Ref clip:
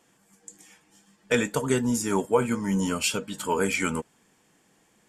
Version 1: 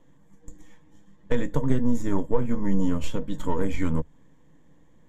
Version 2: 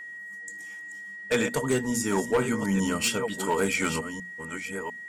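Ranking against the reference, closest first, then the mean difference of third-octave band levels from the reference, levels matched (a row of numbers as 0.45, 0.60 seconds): 2, 1; 3.5, 7.5 decibels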